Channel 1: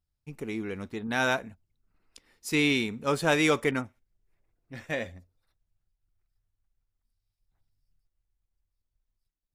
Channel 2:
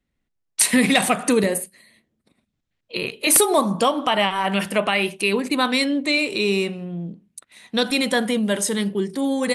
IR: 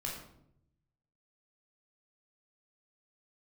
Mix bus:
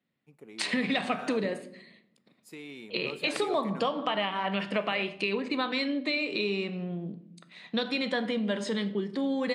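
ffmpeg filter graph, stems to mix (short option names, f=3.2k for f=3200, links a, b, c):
-filter_complex "[0:a]alimiter=limit=-20dB:level=0:latency=1:release=22,equalizer=f=620:t=o:w=2:g=6,volume=-17.5dB,asplit=2[a][b];[b]volume=-17dB[c];[1:a]lowpass=f=5.3k:w=0.5412,lowpass=f=5.3k:w=1.3066,acompressor=threshold=-27dB:ratio=3,volume=-3dB,asplit=2[d][e];[e]volume=-9.5dB[f];[2:a]atrim=start_sample=2205[g];[c][f]amix=inputs=2:normalize=0[h];[h][g]afir=irnorm=-1:irlink=0[i];[a][d][i]amix=inputs=3:normalize=0,highpass=f=130:w=0.5412,highpass=f=130:w=1.3066,equalizer=f=5.9k:w=5.5:g=-9"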